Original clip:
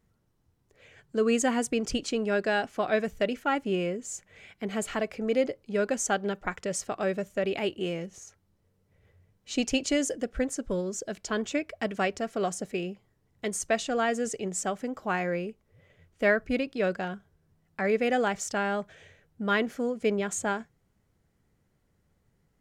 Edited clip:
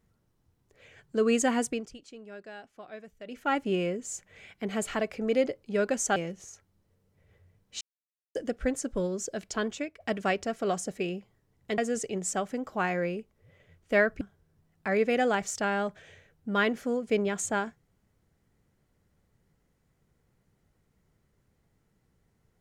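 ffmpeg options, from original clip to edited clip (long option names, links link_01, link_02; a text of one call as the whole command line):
ffmpeg -i in.wav -filter_complex "[0:a]asplit=9[link_01][link_02][link_03][link_04][link_05][link_06][link_07][link_08][link_09];[link_01]atrim=end=1.9,asetpts=PTS-STARTPTS,afade=type=out:start_time=1.63:duration=0.27:silence=0.125893[link_10];[link_02]atrim=start=1.9:end=3.25,asetpts=PTS-STARTPTS,volume=-18dB[link_11];[link_03]atrim=start=3.25:end=6.162,asetpts=PTS-STARTPTS,afade=type=in:duration=0.27:silence=0.125893[link_12];[link_04]atrim=start=7.898:end=9.55,asetpts=PTS-STARTPTS,afade=type=out:start_time=1.648:duration=0.004:curve=hsin[link_13];[link_05]atrim=start=9.55:end=10.09,asetpts=PTS-STARTPTS,volume=0[link_14];[link_06]atrim=start=10.09:end=11.74,asetpts=PTS-STARTPTS,afade=type=in:duration=0.004:curve=hsin,afade=type=out:start_time=1.22:duration=0.43:silence=0.223872[link_15];[link_07]atrim=start=11.74:end=13.522,asetpts=PTS-STARTPTS,afade=type=in:duration=0.004:curve=hsin:silence=0.223872[link_16];[link_08]atrim=start=14.078:end=16.512[link_17];[link_09]atrim=start=17.138[link_18];[link_10][link_11][link_12]concat=n=3:v=0:a=1[link_19];[link_13][link_14][link_15][link_16]concat=n=4:v=0:a=1[link_20];[link_19][link_20]acrossfade=duration=0.004:curve1=hsin:curve2=hsin[link_21];[link_21][link_17]acrossfade=duration=0.004:curve1=hsin:curve2=hsin[link_22];[link_22][link_18]acrossfade=duration=0.004:curve1=hsin:curve2=hsin" out.wav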